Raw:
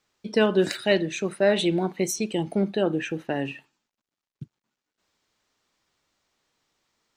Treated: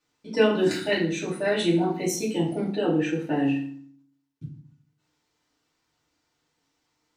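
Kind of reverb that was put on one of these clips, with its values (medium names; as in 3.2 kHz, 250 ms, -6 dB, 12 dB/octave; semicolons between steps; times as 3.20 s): FDN reverb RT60 0.52 s, low-frequency decay 1.55×, high-frequency decay 0.8×, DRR -7.5 dB; trim -8.5 dB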